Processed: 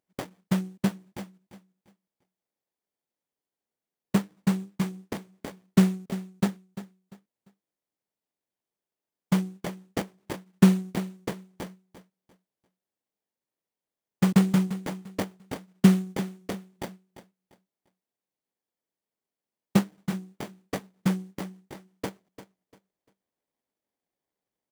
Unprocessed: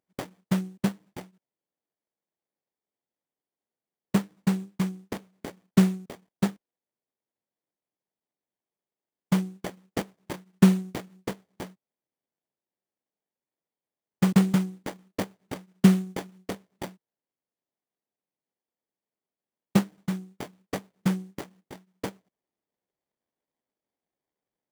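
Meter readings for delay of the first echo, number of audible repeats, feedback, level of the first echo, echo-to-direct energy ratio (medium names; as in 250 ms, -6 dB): 346 ms, 2, 28%, -14.0 dB, -13.5 dB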